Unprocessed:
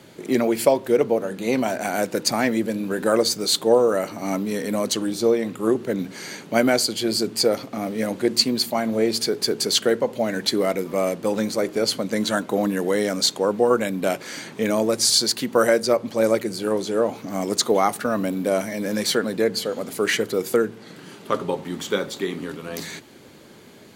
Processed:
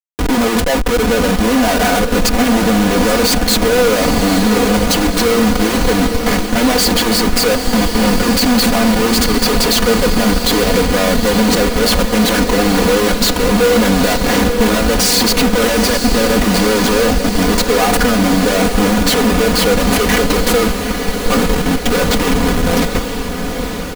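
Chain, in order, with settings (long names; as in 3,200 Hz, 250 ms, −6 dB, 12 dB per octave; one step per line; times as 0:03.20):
gate pattern "xxxxxx.xx.xxxx" 151 BPM −12 dB
comparator with hysteresis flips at −31 dBFS
comb filter 4.1 ms, depth 87%
on a send: feedback delay with all-pass diffusion 872 ms, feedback 68%, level −8 dB
on the sum: level +7.5 dB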